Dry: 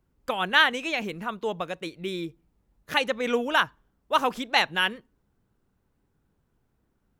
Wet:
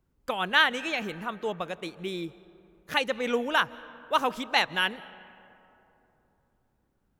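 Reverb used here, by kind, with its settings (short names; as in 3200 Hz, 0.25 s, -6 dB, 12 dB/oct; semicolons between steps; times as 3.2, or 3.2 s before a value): digital reverb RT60 3.2 s, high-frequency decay 0.4×, pre-delay 0.115 s, DRR 19 dB; gain -2 dB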